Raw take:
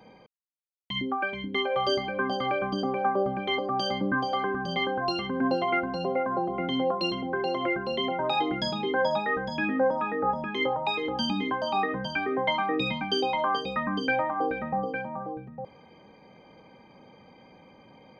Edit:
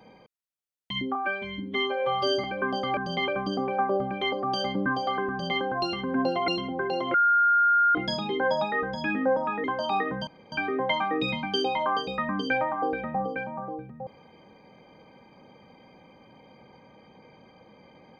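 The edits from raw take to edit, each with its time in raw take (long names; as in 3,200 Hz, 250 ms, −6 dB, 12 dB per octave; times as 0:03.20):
0:01.15–0:02.01: time-stretch 1.5×
0:04.56–0:04.87: duplicate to 0:02.54
0:05.74–0:07.02: remove
0:07.68–0:08.49: beep over 1,410 Hz −17.5 dBFS
0:10.18–0:11.47: remove
0:12.10: splice in room tone 0.25 s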